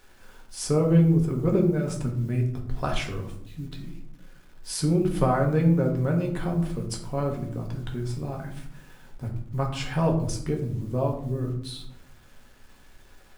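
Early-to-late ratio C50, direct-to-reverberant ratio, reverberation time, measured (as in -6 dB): 7.5 dB, 0.5 dB, 0.70 s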